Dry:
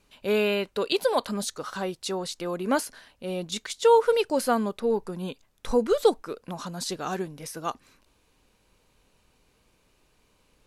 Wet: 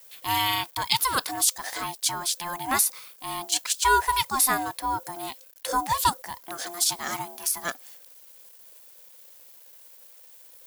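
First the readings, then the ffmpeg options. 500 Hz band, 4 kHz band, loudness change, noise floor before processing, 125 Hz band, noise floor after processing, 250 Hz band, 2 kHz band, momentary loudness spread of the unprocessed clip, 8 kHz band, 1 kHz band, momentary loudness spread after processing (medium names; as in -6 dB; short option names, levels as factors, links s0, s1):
-14.0 dB, +6.5 dB, +1.5 dB, -67 dBFS, -2.5 dB, -52 dBFS, -8.5 dB, +6.0 dB, 15 LU, +12.5 dB, +5.0 dB, 14 LU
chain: -af "aeval=exprs='val(0)*sin(2*PI*520*n/s)':c=same,acrusher=bits=10:mix=0:aa=0.000001,aemphasis=mode=production:type=riaa,volume=1.33"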